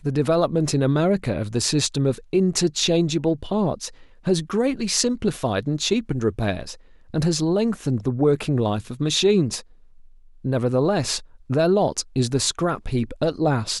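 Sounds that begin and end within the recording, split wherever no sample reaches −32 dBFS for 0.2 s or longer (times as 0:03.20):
0:04.26–0:06.74
0:07.14–0:09.61
0:10.45–0:11.19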